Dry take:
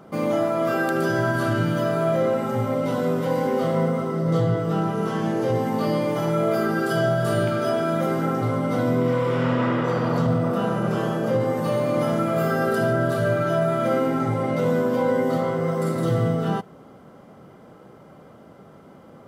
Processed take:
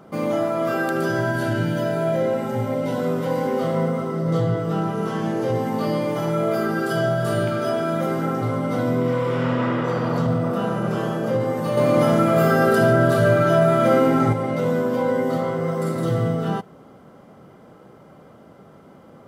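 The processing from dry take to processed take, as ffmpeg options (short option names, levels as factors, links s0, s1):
-filter_complex "[0:a]asettb=1/sr,asplit=3[s0][s1][s2];[s0]atrim=end=1.214[s3];[s1]atrim=start=1.21:end=3,asetpts=PTS-STARTPTS,afade=t=in:d=0.004:c=qsin,afade=t=out:st=1.786:d=0.004:c=qsin,asuperstop=centerf=1200:order=4:qfactor=4.3[s4];[s2]atrim=start=2.996[s5];[s3][s4]acrossfade=d=0.004:c1=hsin:c2=qsin[s6];[s6][s5]acrossfade=d=0.004:c1=qsin:c2=hsin,asettb=1/sr,asplit=3[s7][s8][s9];[s7]atrim=end=11.774[s10];[s8]atrim=start=11.77:end=14.33,asetpts=PTS-STARTPTS,afade=t=in:d=0.004:c=qsin,afade=t=out:st=2.556:d=0.004:c=qsin,acontrast=35[s11];[s9]atrim=start=14.326[s12];[s10][s11]acrossfade=d=0.004:c1=hsin:c2=qsin[s13];[s13][s12]acrossfade=d=0.004:c1=qsin:c2=hsin"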